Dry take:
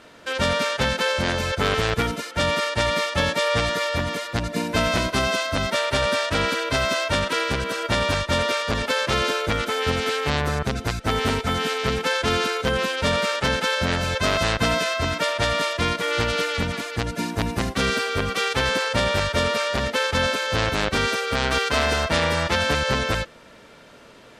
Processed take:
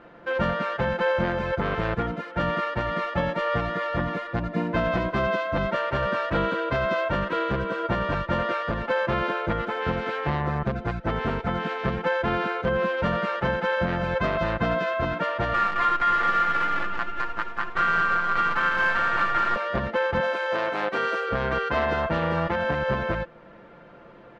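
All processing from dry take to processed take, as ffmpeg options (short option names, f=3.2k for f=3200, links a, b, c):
-filter_complex "[0:a]asettb=1/sr,asplit=3[a][b][c];[a]atrim=end=15.544[d];[b]atrim=start=15.54:end=19.56,asetpts=PTS-STARTPTS,afade=t=in:d=0.004:c=qsin,afade=t=out:st=4.016:d=0.004:c=qsin,highpass=f=1.3k:t=q:w=3.4,acrusher=bits=4:dc=4:mix=0:aa=0.000001,aecho=1:1:216:0.631,atrim=end_sample=177282[e];[c]atrim=start=19.556[f];[d][e]acrossfade=d=0.004:c1=hsin:c2=qsin[g];[g][f]acrossfade=d=0.004:c1=qsin:c2=hsin,asettb=1/sr,asplit=3[h][i][j];[h]atrim=end=20.204[k];[i]atrim=start=20.2:end=21.29,asetpts=PTS-STARTPTS,afade=t=in:d=0.004:c=qsin,afade=t=out:st=1.086:d=0.004:c=qsin,highpass=380,highshelf=f=7.7k:g=10.5[l];[j]atrim=start=21.286[m];[k][l]acrossfade=d=0.004:c1=hsin:c2=qsin[n];[n][m]acrossfade=d=0.004:c1=qsin:c2=hsin,lowpass=1.5k,aecho=1:1:5.8:0.55,alimiter=limit=-13.5dB:level=0:latency=1:release=330"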